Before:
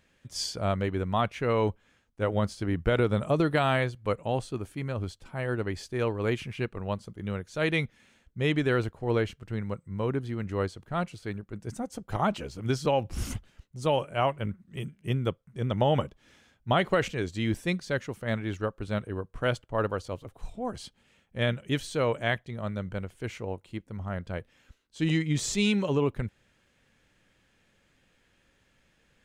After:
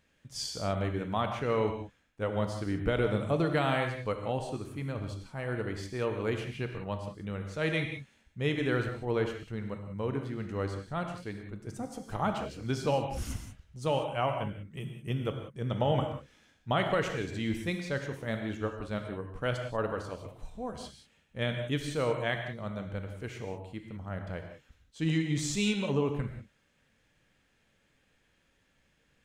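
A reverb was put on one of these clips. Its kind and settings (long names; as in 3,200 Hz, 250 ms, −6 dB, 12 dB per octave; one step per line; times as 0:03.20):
reverb whose tail is shaped and stops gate 210 ms flat, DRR 4.5 dB
level −4.5 dB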